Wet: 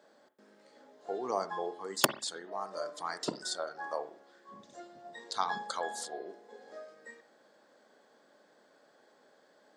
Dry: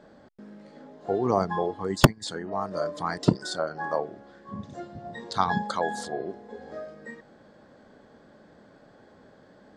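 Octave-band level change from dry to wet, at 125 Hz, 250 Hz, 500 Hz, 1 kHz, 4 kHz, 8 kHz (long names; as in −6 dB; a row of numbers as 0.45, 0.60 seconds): −25.0, −16.0, −9.5, −7.5, −3.0, +0.5 decibels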